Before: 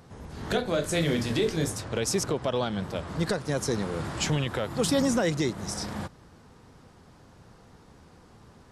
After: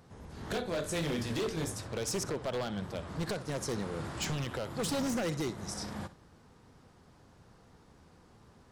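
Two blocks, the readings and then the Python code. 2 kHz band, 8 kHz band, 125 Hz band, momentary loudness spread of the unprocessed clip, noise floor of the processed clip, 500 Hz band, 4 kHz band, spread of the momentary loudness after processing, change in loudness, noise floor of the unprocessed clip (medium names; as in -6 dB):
-7.0 dB, -6.0 dB, -7.0 dB, 8 LU, -60 dBFS, -7.5 dB, -7.0 dB, 7 LU, -7.0 dB, -55 dBFS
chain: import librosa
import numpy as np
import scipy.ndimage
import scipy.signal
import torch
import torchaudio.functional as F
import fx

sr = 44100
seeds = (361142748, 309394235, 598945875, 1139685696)

y = fx.room_flutter(x, sr, wall_m=10.8, rt60_s=0.24)
y = 10.0 ** (-21.0 / 20.0) * (np.abs((y / 10.0 ** (-21.0 / 20.0) + 3.0) % 4.0 - 2.0) - 1.0)
y = y * librosa.db_to_amplitude(-6.0)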